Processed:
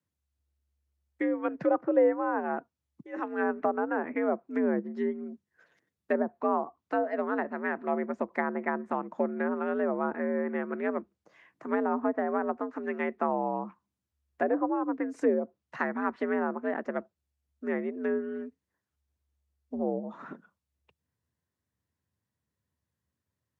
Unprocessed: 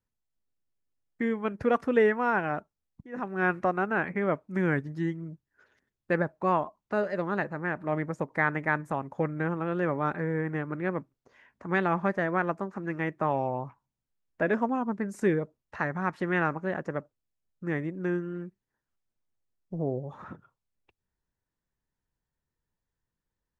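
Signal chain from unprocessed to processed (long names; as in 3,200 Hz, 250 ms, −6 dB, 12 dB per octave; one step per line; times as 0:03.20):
treble cut that deepens with the level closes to 840 Hz, closed at −23 dBFS
frequency shifter +69 Hz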